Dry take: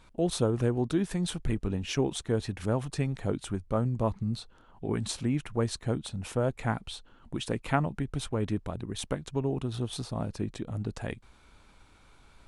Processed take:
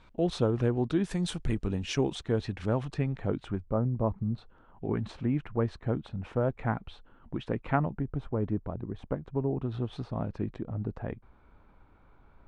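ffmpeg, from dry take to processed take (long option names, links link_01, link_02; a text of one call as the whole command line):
ffmpeg -i in.wav -af "asetnsamples=nb_out_samples=441:pad=0,asendcmd='1.04 lowpass f 7900;2.15 lowpass f 4300;2.94 lowpass f 2500;3.63 lowpass f 1100;4.38 lowpass f 1900;7.91 lowpass f 1100;9.62 lowpass f 2100;10.56 lowpass f 1300',lowpass=4100" out.wav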